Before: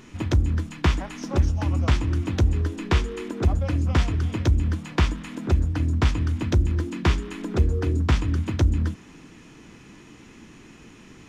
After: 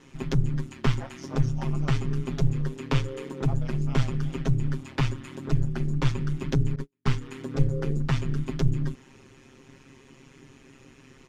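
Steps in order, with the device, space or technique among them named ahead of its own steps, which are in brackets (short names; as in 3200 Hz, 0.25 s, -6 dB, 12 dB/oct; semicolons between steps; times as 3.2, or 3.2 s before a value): 6.75–7.21 gate -22 dBFS, range -46 dB; ring-modulated robot voice (ring modulator 67 Hz; comb 7.5 ms, depth 77%); gain -4 dB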